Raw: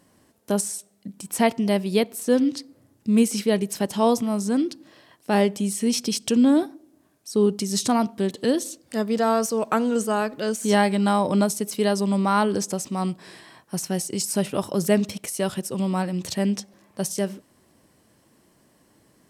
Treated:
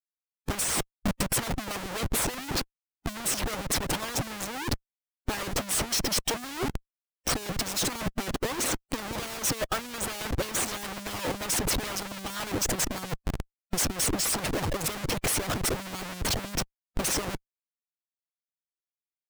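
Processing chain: Schmitt trigger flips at -35.5 dBFS; harmonic-percussive split harmonic -18 dB

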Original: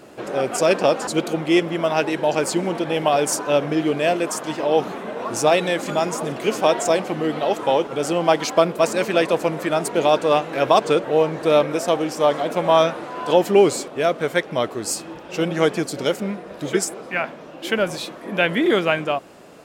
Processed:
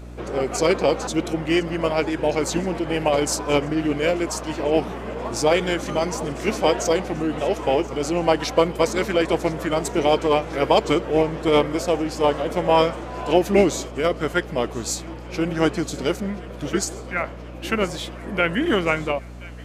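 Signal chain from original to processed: thinning echo 1027 ms, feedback 73%, high-pass 1.2 kHz, level -19.5 dB; hum 60 Hz, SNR 16 dB; formant shift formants -2 st; trim -1.5 dB

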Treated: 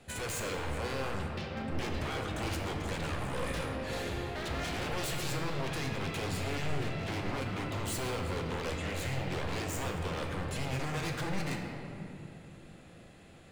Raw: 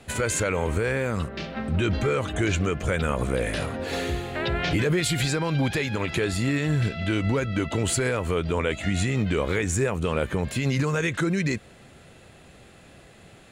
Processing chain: wavefolder -24.5 dBFS; on a send: reverberation RT60 3.1 s, pre-delay 6 ms, DRR 1 dB; on the sum: trim -8.5 dB

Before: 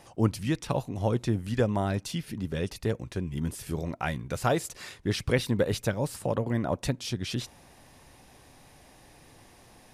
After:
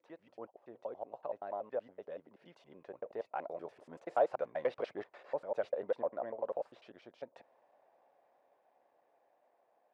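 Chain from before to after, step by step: slices played last to first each 97 ms, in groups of 7; Doppler pass-by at 4.59 s, 10 m/s, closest 12 m; saturation -18.5 dBFS, distortion -18 dB; ladder band-pass 700 Hz, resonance 50%; trim +7.5 dB

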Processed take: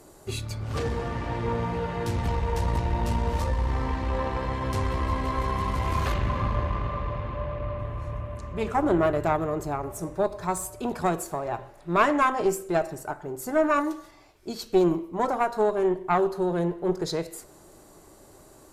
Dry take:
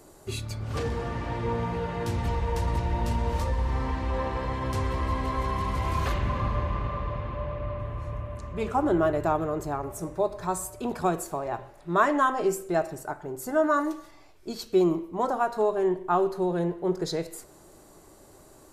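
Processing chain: valve stage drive 14 dB, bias 0.65; trim +4.5 dB

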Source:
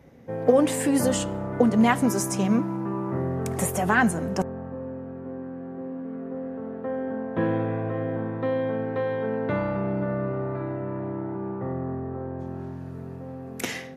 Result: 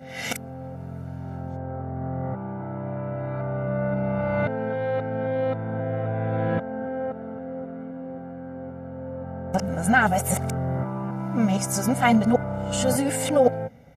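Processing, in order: reverse the whole clip; comb 1.4 ms, depth 70%

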